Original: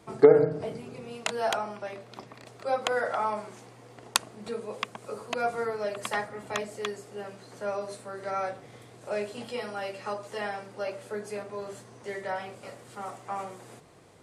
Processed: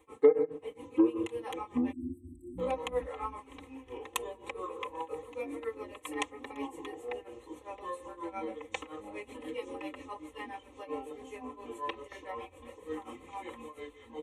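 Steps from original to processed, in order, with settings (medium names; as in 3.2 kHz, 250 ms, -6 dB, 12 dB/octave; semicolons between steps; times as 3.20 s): tremolo 7.4 Hz, depth 90%; ever faster or slower copies 667 ms, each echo -5 st, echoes 3; static phaser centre 1 kHz, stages 8; spectral selection erased 1.92–2.58 s, 370–7700 Hz; comb 3.9 ms, depth 81%; trim -4.5 dB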